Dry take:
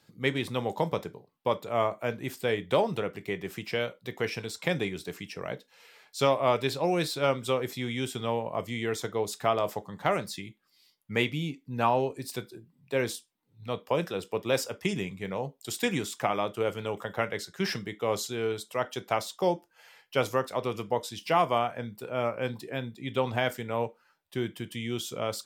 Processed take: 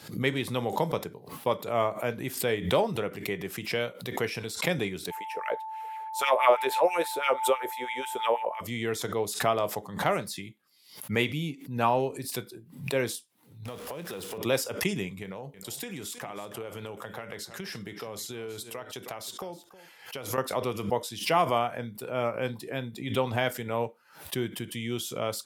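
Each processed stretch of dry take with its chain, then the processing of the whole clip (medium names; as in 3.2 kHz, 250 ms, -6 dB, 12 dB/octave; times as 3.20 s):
5.10–8.60 s: peaking EQ 4.8 kHz -11 dB 1 oct + LFO high-pass sine 6.1 Hz 450–2400 Hz + whistle 880 Hz -35 dBFS
13.65–14.38 s: jump at every zero crossing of -36.5 dBFS + compression 10:1, threshold -34 dBFS
15.22–20.38 s: compression 10:1, threshold -34 dBFS + delay 317 ms -16 dB
whole clip: high-pass 49 Hz; peaking EQ 11 kHz +9.5 dB 0.34 oct; swell ahead of each attack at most 110 dB/s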